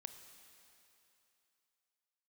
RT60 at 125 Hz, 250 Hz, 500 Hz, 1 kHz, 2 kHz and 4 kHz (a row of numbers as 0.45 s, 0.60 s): 2.6 s, 2.7 s, 2.9 s, 3.0 s, 2.9 s, 3.0 s